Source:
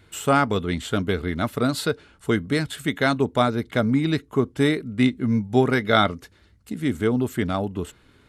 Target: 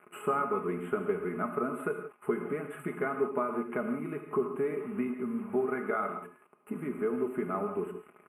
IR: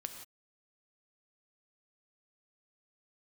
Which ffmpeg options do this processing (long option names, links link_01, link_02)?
-filter_complex "[0:a]acompressor=threshold=-31dB:ratio=8,acrusher=bits=7:mix=0:aa=0.000001,asuperstop=centerf=5200:order=8:qfactor=0.58,highpass=220,equalizer=frequency=380:width_type=q:width=4:gain=7,equalizer=frequency=1200:width_type=q:width=4:gain=9,equalizer=frequency=1800:width_type=q:width=4:gain=-8,equalizer=frequency=2600:width_type=q:width=4:gain=6,equalizer=frequency=7900:width_type=q:width=4:gain=8,lowpass=frequency=9800:width=0.5412,lowpass=frequency=9800:width=1.3066,aecho=1:1:4.8:0.6[link_01];[1:a]atrim=start_sample=2205[link_02];[link_01][link_02]afir=irnorm=-1:irlink=0,volume=2dB"